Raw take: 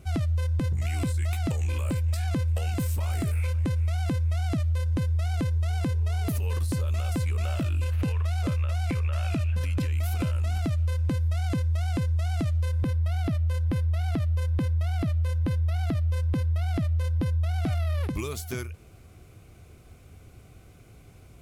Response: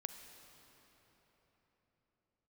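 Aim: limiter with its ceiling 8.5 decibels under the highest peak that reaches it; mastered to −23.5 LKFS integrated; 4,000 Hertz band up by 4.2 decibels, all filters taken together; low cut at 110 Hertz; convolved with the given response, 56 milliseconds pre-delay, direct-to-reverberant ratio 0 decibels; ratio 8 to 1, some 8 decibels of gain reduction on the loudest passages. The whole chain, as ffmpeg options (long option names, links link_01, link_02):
-filter_complex "[0:a]highpass=110,equalizer=frequency=4000:width_type=o:gain=5.5,acompressor=threshold=-33dB:ratio=8,alimiter=level_in=8dB:limit=-24dB:level=0:latency=1,volume=-8dB,asplit=2[link_01][link_02];[1:a]atrim=start_sample=2205,adelay=56[link_03];[link_02][link_03]afir=irnorm=-1:irlink=0,volume=2.5dB[link_04];[link_01][link_04]amix=inputs=2:normalize=0,volume=16.5dB"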